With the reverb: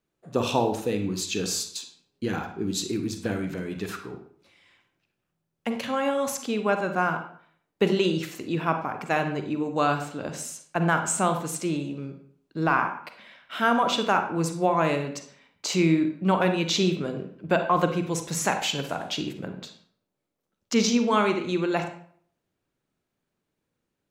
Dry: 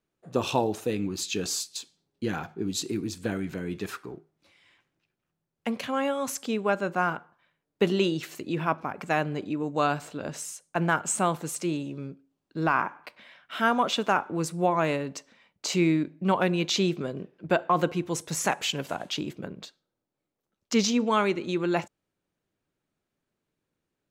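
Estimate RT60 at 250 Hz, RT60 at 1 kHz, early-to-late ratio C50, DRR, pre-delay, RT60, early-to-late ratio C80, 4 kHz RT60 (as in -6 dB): 0.60 s, 0.55 s, 8.5 dB, 6.5 dB, 37 ms, 0.55 s, 12.0 dB, 0.40 s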